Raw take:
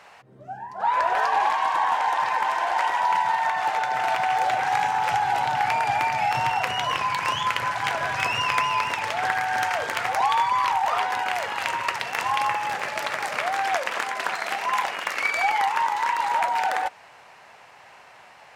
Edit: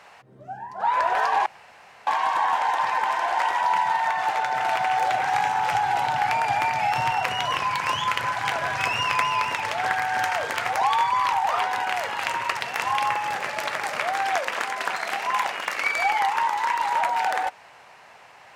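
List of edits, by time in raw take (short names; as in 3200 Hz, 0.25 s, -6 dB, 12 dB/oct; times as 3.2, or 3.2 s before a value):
1.46 insert room tone 0.61 s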